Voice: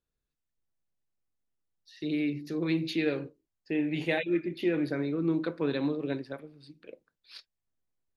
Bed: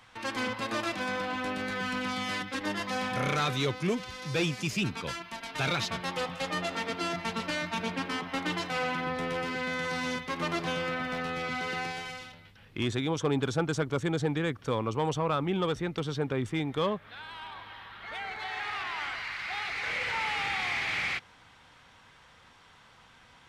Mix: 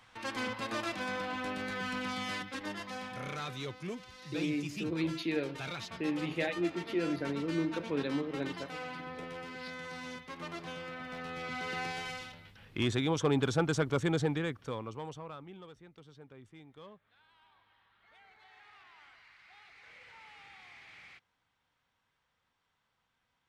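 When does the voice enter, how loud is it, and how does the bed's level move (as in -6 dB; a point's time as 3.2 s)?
2.30 s, -4.5 dB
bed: 2.29 s -4 dB
3.15 s -11 dB
10.92 s -11 dB
12.09 s -0.5 dB
14.18 s -0.5 dB
15.73 s -23 dB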